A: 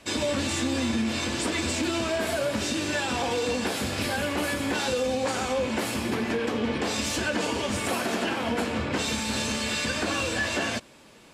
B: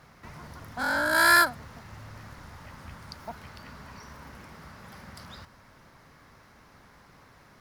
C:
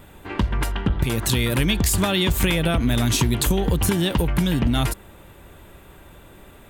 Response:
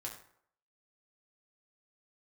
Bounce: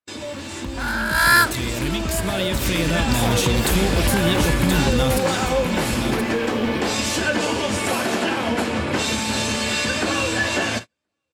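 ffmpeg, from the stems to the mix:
-filter_complex "[0:a]bandreject=f=60:t=h:w=6,bandreject=f=120:t=h:w=6,volume=-7.5dB,asplit=3[a][b][c];[b]volume=-6dB[d];[c]volume=-17dB[e];[1:a]highpass=840,volume=1dB[f];[2:a]adelay=250,volume=-9dB,asplit=2[g][h];[h]volume=-9dB[i];[a][g]amix=inputs=2:normalize=0,alimiter=limit=-20.5dB:level=0:latency=1:release=176,volume=0dB[j];[3:a]atrim=start_sample=2205[k];[d][k]afir=irnorm=-1:irlink=0[l];[e][i]amix=inputs=2:normalize=0,aecho=0:1:1026:1[m];[f][j][l][m]amix=inputs=4:normalize=0,agate=range=-39dB:threshold=-38dB:ratio=16:detection=peak,dynaudnorm=f=280:g=9:m=11dB"

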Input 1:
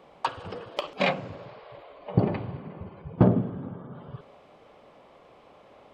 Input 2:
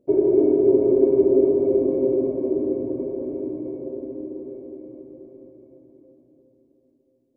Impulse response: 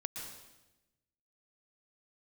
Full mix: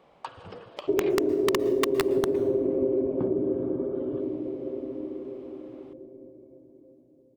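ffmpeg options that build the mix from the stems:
-filter_complex "[0:a]acompressor=threshold=-28dB:ratio=6,volume=-6dB,asplit=2[a][b];[b]volume=-16.5dB[c];[1:a]aeval=exprs='(mod(2.37*val(0)+1,2)-1)/2.37':c=same,adelay=800,volume=-3dB,asplit=2[d][e];[e]volume=-15.5dB[f];[2:a]atrim=start_sample=2205[g];[c][f]amix=inputs=2:normalize=0[h];[h][g]afir=irnorm=-1:irlink=0[i];[a][d][i]amix=inputs=3:normalize=0,acompressor=threshold=-21dB:ratio=6"

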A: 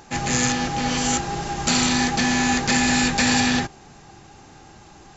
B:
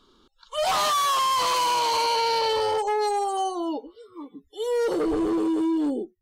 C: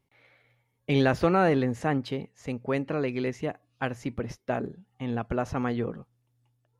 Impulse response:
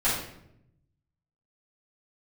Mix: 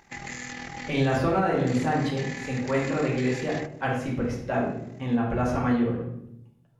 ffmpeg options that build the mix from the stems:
-filter_complex "[0:a]equalizer=f=2k:w=4.4:g=14.5,acompressor=threshold=-19dB:ratio=6,tremolo=f=40:d=0.667,volume=-10dB[a];[2:a]volume=-2dB,asplit=2[b][c];[c]volume=-8dB[d];[a][b]amix=inputs=2:normalize=0,asoftclip=type=tanh:threshold=-18.5dB,alimiter=level_in=3dB:limit=-24dB:level=0:latency=1:release=14,volume=-3dB,volume=0dB[e];[3:a]atrim=start_sample=2205[f];[d][f]afir=irnorm=-1:irlink=0[g];[e][g]amix=inputs=2:normalize=0,alimiter=limit=-14dB:level=0:latency=1:release=310"

